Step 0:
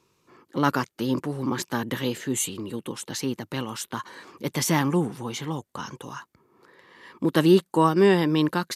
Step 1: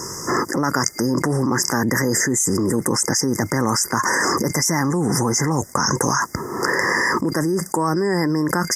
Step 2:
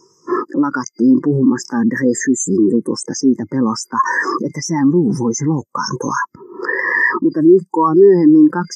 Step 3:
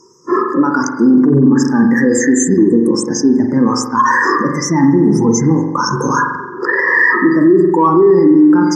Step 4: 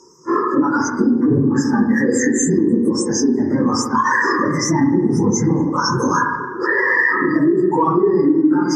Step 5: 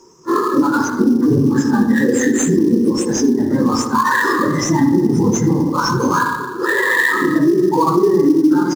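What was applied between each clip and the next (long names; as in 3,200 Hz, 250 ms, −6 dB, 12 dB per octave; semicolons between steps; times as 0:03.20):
brick-wall band-stop 2,100–4,800 Hz; parametric band 5,700 Hz +11 dB 1.9 octaves; envelope flattener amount 100%; level −6.5 dB
low-shelf EQ 120 Hz −10 dB; every bin expanded away from the loudest bin 2.5 to 1
harmonic generator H 5 −40 dB, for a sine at −1 dBFS; spring reverb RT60 1.1 s, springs 43 ms, chirp 50 ms, DRR 2.5 dB; brickwall limiter −5.5 dBFS, peak gain reduction 7.5 dB; level +3 dB
random phases in long frames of 50 ms; downward compressor 2.5 to 1, threshold −14 dBFS, peak gain reduction 8.5 dB
in parallel at −9.5 dB: sample-rate reduction 5,600 Hz, jitter 20%; on the sum: single-tap delay 81 ms −18.5 dB; level −1 dB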